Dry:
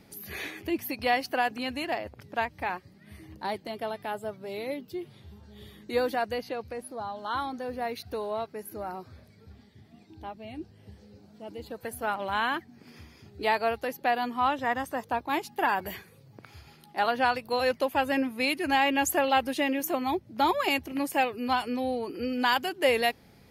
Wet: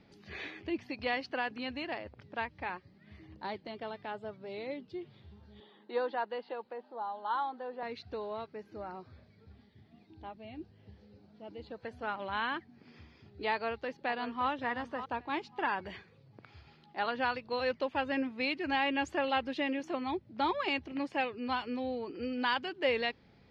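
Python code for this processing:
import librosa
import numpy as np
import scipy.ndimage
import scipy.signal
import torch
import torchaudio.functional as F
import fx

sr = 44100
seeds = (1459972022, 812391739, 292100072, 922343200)

y = fx.cabinet(x, sr, low_hz=240.0, low_slope=24, high_hz=3800.0, hz=(280.0, 880.0, 2300.0), db=(-8, 10, -9), at=(5.6, 7.83))
y = fx.echo_throw(y, sr, start_s=13.51, length_s=0.97, ms=570, feedback_pct=15, wet_db=-11.0)
y = scipy.signal.sosfilt(scipy.signal.butter(4, 4600.0, 'lowpass', fs=sr, output='sos'), y)
y = fx.dynamic_eq(y, sr, hz=710.0, q=4.7, threshold_db=-41.0, ratio=4.0, max_db=-6)
y = y * 10.0 ** (-5.5 / 20.0)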